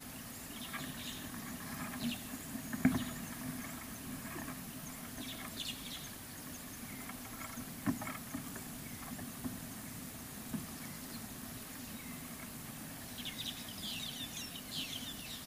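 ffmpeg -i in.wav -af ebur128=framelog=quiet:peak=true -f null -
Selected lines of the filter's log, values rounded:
Integrated loudness:
  I:         -42.4 LUFS
  Threshold: -52.4 LUFS
Loudness range:
  LRA:         4.7 LU
  Threshold: -62.5 LUFS
  LRA low:   -44.7 LUFS
  LRA high:  -40.0 LUFS
True peak:
  Peak:      -15.6 dBFS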